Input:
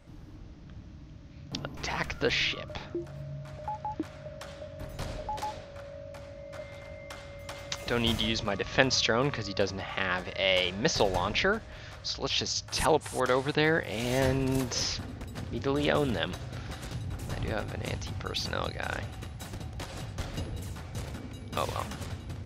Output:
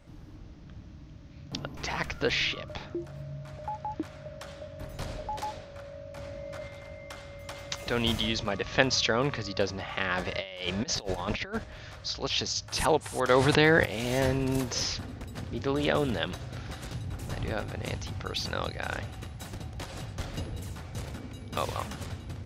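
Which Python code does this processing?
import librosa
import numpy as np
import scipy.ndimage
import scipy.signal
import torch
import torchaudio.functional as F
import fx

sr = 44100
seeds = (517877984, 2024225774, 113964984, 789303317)

y = fx.env_flatten(x, sr, amount_pct=70, at=(6.17, 6.68))
y = fx.over_compress(y, sr, threshold_db=-32.0, ratio=-0.5, at=(10.17, 11.64))
y = fx.env_flatten(y, sr, amount_pct=70, at=(13.29, 13.84), fade=0.02)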